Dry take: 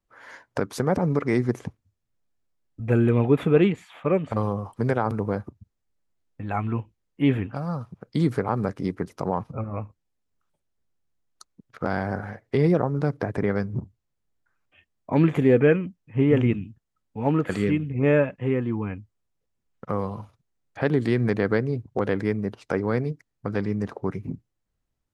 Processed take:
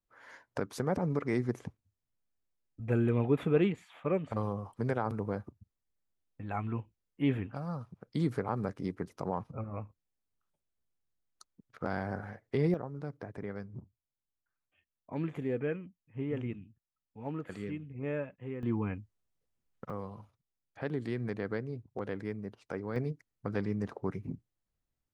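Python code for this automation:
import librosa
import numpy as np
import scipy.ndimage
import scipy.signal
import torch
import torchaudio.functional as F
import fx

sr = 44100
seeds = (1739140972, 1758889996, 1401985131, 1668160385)

y = fx.gain(x, sr, db=fx.steps((0.0, -8.5), (12.74, -16.0), (18.63, -4.5), (19.9, -13.0), (22.96, -7.0)))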